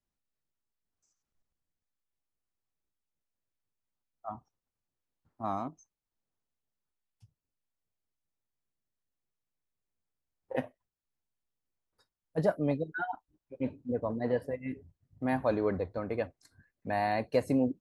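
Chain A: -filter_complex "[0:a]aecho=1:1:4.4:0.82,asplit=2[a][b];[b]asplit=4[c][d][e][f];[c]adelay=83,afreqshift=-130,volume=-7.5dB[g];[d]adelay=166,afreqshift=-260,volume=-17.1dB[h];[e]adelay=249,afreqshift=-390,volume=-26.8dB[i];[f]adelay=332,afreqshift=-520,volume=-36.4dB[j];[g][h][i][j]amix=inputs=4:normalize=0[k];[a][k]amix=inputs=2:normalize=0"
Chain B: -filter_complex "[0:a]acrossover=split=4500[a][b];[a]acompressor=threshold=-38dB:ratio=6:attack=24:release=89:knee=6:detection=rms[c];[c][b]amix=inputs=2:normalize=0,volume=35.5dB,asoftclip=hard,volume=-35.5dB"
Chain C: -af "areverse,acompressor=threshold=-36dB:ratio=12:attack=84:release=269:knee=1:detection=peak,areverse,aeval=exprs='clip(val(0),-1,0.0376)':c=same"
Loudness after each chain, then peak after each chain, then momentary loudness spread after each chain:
-30.0, -43.5, -39.0 LUFS; -12.0, -35.5, -19.0 dBFS; 15, 10, 9 LU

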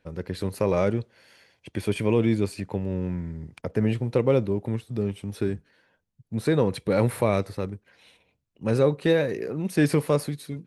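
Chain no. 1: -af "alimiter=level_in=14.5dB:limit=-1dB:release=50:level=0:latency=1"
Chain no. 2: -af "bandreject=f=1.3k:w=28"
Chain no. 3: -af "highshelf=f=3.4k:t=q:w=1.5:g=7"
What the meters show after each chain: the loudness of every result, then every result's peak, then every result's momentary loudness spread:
-14.0, -26.0, -25.5 LUFS; -1.0, -8.5, -8.5 dBFS; 9, 12, 11 LU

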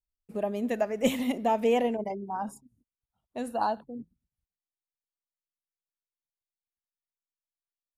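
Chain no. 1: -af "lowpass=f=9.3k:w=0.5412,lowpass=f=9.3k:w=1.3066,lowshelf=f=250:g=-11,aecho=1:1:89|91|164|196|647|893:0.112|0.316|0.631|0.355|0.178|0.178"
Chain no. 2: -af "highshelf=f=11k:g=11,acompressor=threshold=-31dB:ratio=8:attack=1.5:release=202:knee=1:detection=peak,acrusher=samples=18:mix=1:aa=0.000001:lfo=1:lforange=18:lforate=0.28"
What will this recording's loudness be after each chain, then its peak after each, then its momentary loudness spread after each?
-30.0, -37.5 LUFS; -13.0, -27.5 dBFS; 20, 9 LU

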